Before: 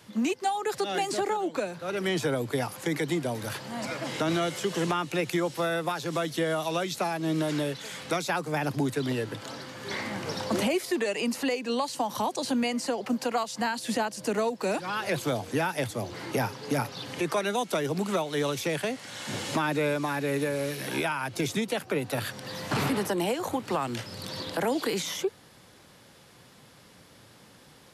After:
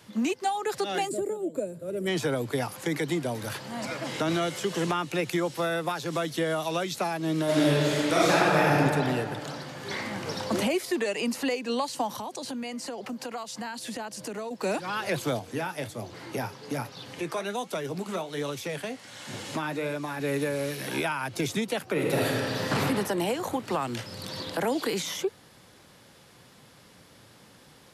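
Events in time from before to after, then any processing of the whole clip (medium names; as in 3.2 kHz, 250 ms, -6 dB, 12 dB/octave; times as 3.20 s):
1.08–2.07 s: time-frequency box 680–6900 Hz -17 dB
7.44–8.75 s: reverb throw, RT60 2.4 s, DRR -7.5 dB
12.08–14.51 s: compression 3:1, threshold -34 dBFS
15.39–20.20 s: flange 1.3 Hz, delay 6.2 ms, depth 7.1 ms, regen -66%
21.92–22.67 s: reverb throw, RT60 2.7 s, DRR -4 dB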